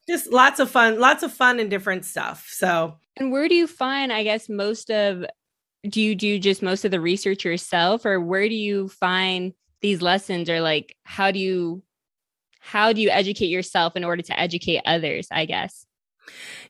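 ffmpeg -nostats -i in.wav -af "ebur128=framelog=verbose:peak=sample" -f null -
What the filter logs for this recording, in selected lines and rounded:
Integrated loudness:
  I:         -21.3 LUFS
  Threshold: -31.8 LUFS
Loudness range:
  LRA:         3.2 LU
  Threshold: -42.4 LUFS
  LRA low:   -23.5 LUFS
  LRA high:  -20.3 LUFS
Sample peak:
  Peak:       -1.8 dBFS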